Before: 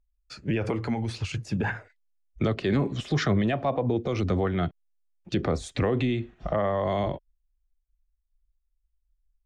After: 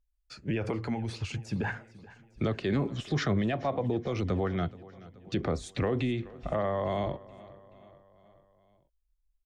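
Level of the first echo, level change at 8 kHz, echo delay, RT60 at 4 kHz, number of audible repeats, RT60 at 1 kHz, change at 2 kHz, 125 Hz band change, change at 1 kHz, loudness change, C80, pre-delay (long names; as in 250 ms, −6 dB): −20.0 dB, −4.0 dB, 428 ms, no reverb audible, 3, no reverb audible, −4.0 dB, −4.0 dB, −4.0 dB, −4.0 dB, no reverb audible, no reverb audible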